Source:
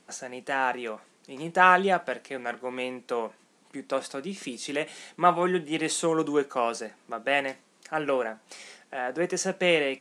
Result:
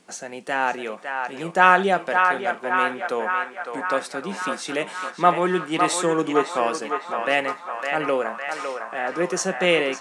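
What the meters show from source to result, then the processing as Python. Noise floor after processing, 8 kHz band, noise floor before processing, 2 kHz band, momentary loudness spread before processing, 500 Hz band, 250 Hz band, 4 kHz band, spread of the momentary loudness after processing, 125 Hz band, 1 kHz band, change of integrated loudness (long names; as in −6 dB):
−42 dBFS, +3.5 dB, −63 dBFS, +6.0 dB, 16 LU, +4.0 dB, +3.5 dB, +4.0 dB, 10 LU, +3.5 dB, +6.0 dB, +4.5 dB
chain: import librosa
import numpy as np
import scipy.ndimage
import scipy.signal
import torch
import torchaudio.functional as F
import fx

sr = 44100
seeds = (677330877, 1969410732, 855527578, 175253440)

y = fx.echo_banded(x, sr, ms=557, feedback_pct=76, hz=1300.0, wet_db=-3.5)
y = y * librosa.db_to_amplitude(3.5)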